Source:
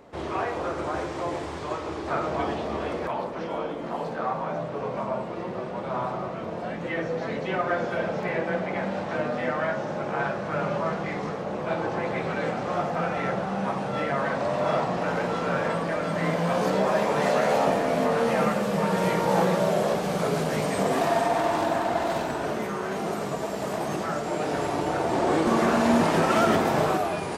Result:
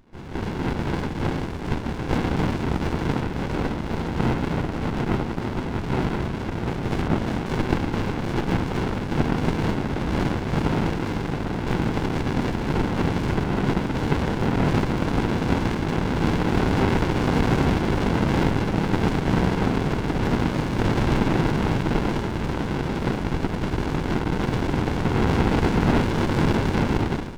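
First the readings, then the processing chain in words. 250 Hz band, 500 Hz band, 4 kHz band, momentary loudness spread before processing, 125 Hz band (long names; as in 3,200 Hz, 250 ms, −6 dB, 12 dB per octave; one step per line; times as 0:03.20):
+6.0 dB, −2.5 dB, +3.5 dB, 9 LU, +10.5 dB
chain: ceiling on every frequency bin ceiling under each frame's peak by 20 dB
automatic gain control gain up to 11.5 dB
high-frequency loss of the air 420 metres
windowed peak hold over 65 samples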